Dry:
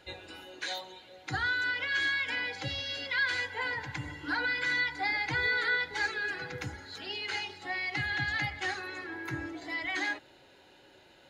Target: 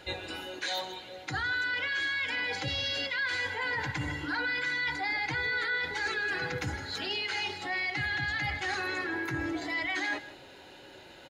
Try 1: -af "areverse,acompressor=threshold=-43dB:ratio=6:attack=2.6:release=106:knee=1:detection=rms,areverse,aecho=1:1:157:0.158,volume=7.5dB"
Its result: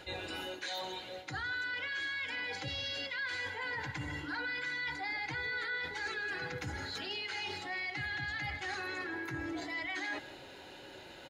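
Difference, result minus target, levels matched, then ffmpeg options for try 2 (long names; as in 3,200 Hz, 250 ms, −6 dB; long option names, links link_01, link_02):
downward compressor: peak gain reduction +6.5 dB
-af "areverse,acompressor=threshold=-35.5dB:ratio=6:attack=2.6:release=106:knee=1:detection=rms,areverse,aecho=1:1:157:0.158,volume=7.5dB"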